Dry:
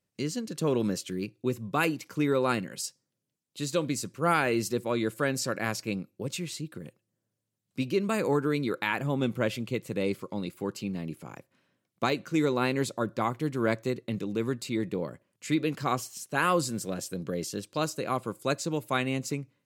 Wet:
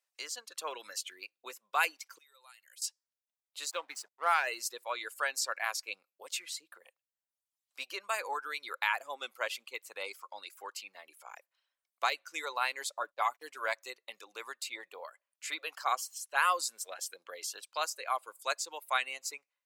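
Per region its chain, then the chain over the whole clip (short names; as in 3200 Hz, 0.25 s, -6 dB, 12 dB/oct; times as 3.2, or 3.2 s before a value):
2.18–2.82 pre-emphasis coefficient 0.9 + compressor, threshold -50 dBFS
3.71–4.47 high shelf 4900 Hz -6.5 dB + backlash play -36 dBFS
13.03–13.66 gate -40 dBFS, range -24 dB + comb 6.9 ms, depth 45% + mismatched tape noise reduction decoder only
whole clip: reverb removal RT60 0.98 s; HPF 730 Hz 24 dB/oct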